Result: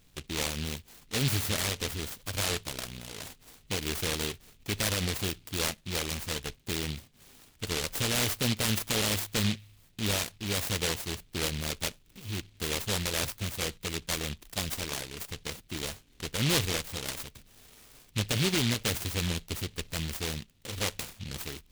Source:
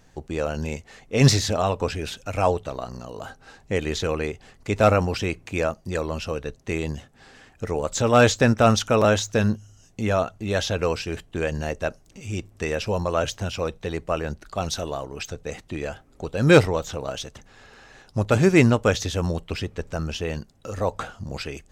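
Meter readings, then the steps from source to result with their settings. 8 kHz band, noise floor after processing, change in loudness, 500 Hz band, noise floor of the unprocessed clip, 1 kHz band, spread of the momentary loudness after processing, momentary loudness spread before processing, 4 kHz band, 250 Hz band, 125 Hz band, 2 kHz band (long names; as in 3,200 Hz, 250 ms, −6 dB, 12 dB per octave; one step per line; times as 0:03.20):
+1.0 dB, −61 dBFS, −7.5 dB, −15.0 dB, −55 dBFS, −13.0 dB, 12 LU, 16 LU, +0.5 dB, −10.5 dB, −9.0 dB, −6.5 dB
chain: brickwall limiter −13.5 dBFS, peak gain reduction 8 dB
short delay modulated by noise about 3,000 Hz, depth 0.39 ms
level −6 dB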